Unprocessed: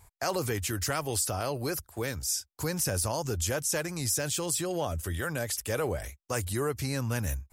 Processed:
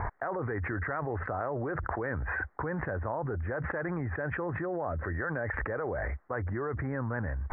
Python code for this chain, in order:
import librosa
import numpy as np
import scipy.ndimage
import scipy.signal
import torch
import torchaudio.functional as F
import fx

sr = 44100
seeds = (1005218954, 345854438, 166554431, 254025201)

y = scipy.signal.sosfilt(scipy.signal.butter(12, 1900.0, 'lowpass', fs=sr, output='sos'), x)
y = fx.low_shelf(y, sr, hz=310.0, db=-8.5)
y = fx.env_flatten(y, sr, amount_pct=100)
y = y * librosa.db_to_amplitude(-3.5)